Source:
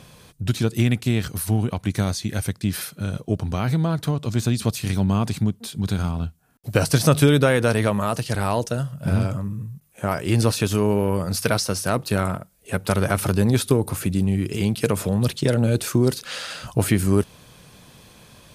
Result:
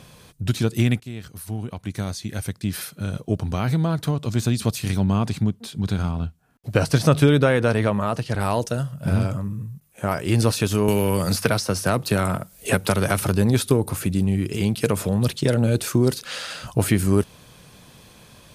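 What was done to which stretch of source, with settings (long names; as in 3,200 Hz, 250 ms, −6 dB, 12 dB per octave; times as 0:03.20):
0:01.00–0:03.29: fade in, from −15 dB
0:04.96–0:08.39: low-pass filter 6,900 Hz → 2,800 Hz 6 dB per octave
0:10.88–0:13.22: multiband upward and downward compressor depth 100%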